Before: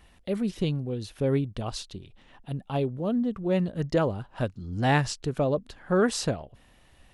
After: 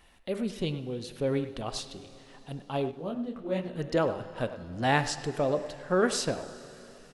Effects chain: peaking EQ 79 Hz -8.5 dB 2.9 oct; de-hum 100.6 Hz, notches 28; speakerphone echo 100 ms, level -12 dB; on a send at -14 dB: reverberation RT60 4.0 s, pre-delay 6 ms; 2.91–3.70 s: on the sum: detune thickener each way 46 cents

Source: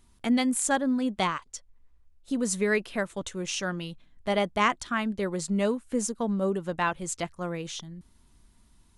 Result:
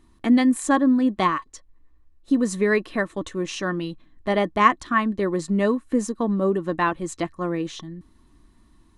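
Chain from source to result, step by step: treble shelf 3.3 kHz -8.5 dB; small resonant body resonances 310/1100/1800/4000 Hz, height 12 dB, ringing for 50 ms; trim +3.5 dB

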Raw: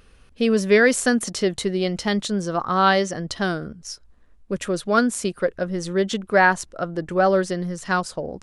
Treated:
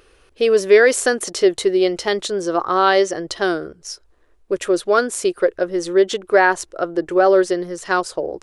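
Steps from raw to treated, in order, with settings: resonant low shelf 280 Hz -7.5 dB, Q 3; in parallel at 0 dB: peak limiter -9 dBFS, peak gain reduction 7.5 dB; on the sum: trim -3 dB

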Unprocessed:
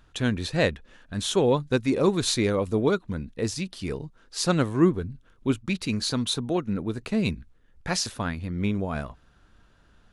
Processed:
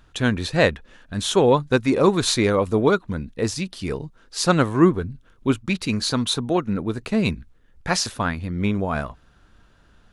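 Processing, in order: dynamic bell 1.1 kHz, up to +5 dB, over -38 dBFS, Q 0.77; trim +3.5 dB

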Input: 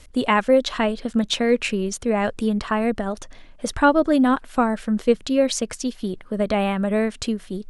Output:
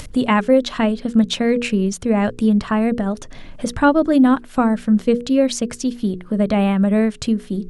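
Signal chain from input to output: upward compressor, threshold -24 dBFS; peaking EQ 150 Hz +9.5 dB 1.8 oct; hum notches 60/120/180/240/300/360/420/480 Hz

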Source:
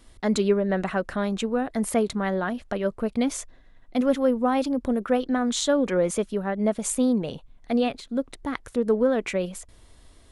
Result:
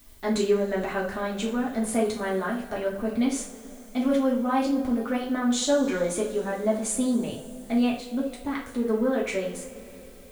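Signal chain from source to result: two-slope reverb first 0.36 s, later 3.9 s, from -22 dB, DRR -4.5 dB; added noise blue -51 dBFS; trim -6.5 dB

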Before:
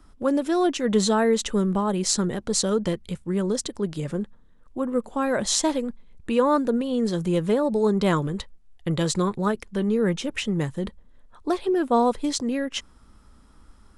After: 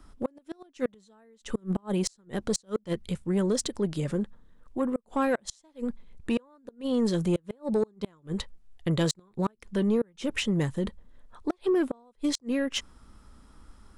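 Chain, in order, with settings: inverted gate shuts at -14 dBFS, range -37 dB; saturation -17 dBFS, distortion -20 dB

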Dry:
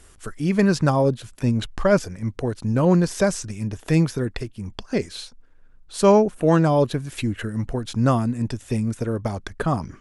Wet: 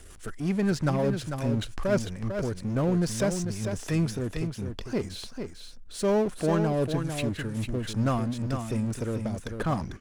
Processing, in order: rotary cabinet horn 5.5 Hz, later 1.2 Hz, at 2.31 s; power-law waveshaper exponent 0.7; delay 447 ms -7 dB; trim -9 dB

